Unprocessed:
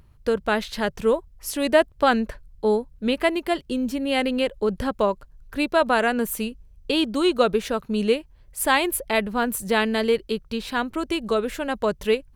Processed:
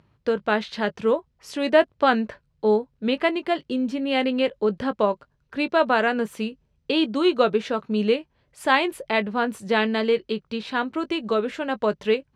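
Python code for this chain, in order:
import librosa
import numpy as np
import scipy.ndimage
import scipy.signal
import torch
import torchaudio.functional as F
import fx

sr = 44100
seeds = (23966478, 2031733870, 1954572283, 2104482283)

y = fx.bandpass_edges(x, sr, low_hz=140.0, high_hz=4400.0)
y = fx.doubler(y, sr, ms=19.0, db=-13)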